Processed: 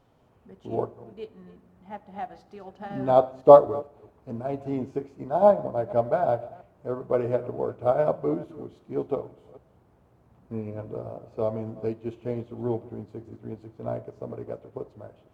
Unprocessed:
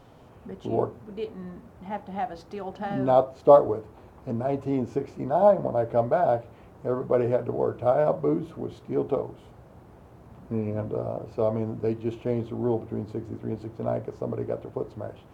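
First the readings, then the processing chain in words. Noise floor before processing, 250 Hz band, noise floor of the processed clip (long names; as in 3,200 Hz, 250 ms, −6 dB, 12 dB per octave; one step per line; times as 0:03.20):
−51 dBFS, −3.5 dB, −61 dBFS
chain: delay that plays each chunk backwards 228 ms, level −14 dB
comb and all-pass reverb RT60 0.93 s, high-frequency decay 0.8×, pre-delay 55 ms, DRR 16 dB
expander for the loud parts 1.5 to 1, over −40 dBFS
level +3.5 dB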